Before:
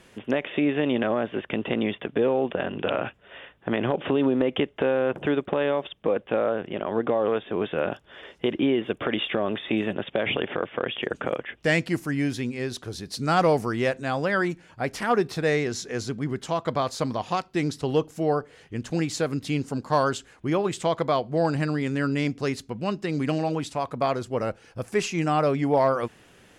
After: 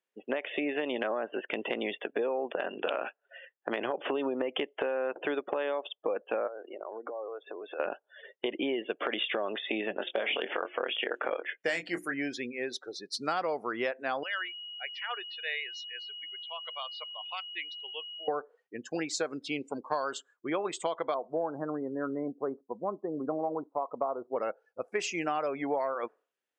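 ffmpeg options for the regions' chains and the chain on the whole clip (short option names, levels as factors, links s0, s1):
-filter_complex "[0:a]asettb=1/sr,asplit=3[s0][s1][s2];[s0]atrim=end=6.474[s3];[s1]atrim=start=6.47:end=7.8,asetpts=PTS-STARTPTS,afade=t=in:d=0.004:c=qsin,afade=t=out:st=1.326:d=0.004:c=qsin,bandreject=f=3100:w=12,acompressor=threshold=0.0282:ratio=10:attack=3.2:release=140:knee=1:detection=peak,highpass=200,lowpass=5600[s4];[s2]atrim=start=7.796[s5];[s3][s4]acrossfade=d=0.004:c1=hsin:c2=qsin[s6];[s6][s5]acrossfade=d=0.004:c1=qsin:c2=hsin,asettb=1/sr,asplit=3[s7][s8][s9];[s7]atrim=end=9.954[s10];[s8]atrim=start=9.95:end=12.14,asetpts=PTS-STARTPTS,afade=t=in:d=0.004:c=qsin,afade=t=out:st=2.186:d=0.004:c=qsin,highshelf=f=5900:g=7,bandreject=f=60:t=h:w=6,bandreject=f=120:t=h:w=6,bandreject=f=180:t=h:w=6,bandreject=f=240:t=h:w=6,bandreject=f=300:t=h:w=6,bandreject=f=360:t=h:w=6,asplit=2[s11][s12];[s12]adelay=23,volume=0.447[s13];[s11][s13]amix=inputs=2:normalize=0,atrim=end_sample=96579[s14];[s9]atrim=start=12.136[s15];[s10][s14]acrossfade=d=0.004:c1=hsin:c2=qsin[s16];[s16][s15]acrossfade=d=0.004:c1=qsin:c2=hsin,asettb=1/sr,asplit=3[s17][s18][s19];[s17]atrim=end=14.234[s20];[s18]atrim=start=14.23:end=18.28,asetpts=PTS-STARTPTS,afade=t=in:d=0.004:c=qsin,afade=t=out:st=4.046:d=0.004:c=qsin,aeval=exprs='val(0)+0.01*sin(2*PI*2900*n/s)':c=same,bandpass=f=2800:t=q:w=1.7[s21];[s19]atrim=start=18.276[s22];[s20][s21]acrossfade=d=0.004:c1=hsin:c2=qsin[s23];[s23][s22]acrossfade=d=0.004:c1=qsin:c2=hsin,asettb=1/sr,asplit=3[s24][s25][s26];[s24]atrim=end=21.144[s27];[s25]atrim=start=21.14:end=24.36,asetpts=PTS-STARTPTS,afade=t=in:d=0.004:c=qsin,afade=t=out:st=3.216:d=0.004:c=qsin,lowpass=f=1200:w=0.5412,lowpass=f=1200:w=1.3066,acrusher=bits=7:mode=log:mix=0:aa=0.000001[s28];[s26]atrim=start=24.356[s29];[s27][s28]acrossfade=d=0.004:c1=hsin:c2=qsin[s30];[s30][s29]acrossfade=d=0.004:c1=qsin:c2=hsin,highpass=440,afftdn=nr=35:nf=-39,acompressor=threshold=0.0447:ratio=10"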